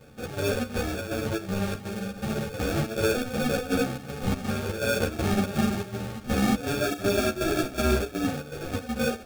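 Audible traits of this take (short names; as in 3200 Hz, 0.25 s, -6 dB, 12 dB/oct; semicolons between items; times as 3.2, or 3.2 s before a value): chopped level 2.7 Hz, depth 65%, duty 70%; aliases and images of a low sample rate 1000 Hz, jitter 0%; a shimmering, thickened sound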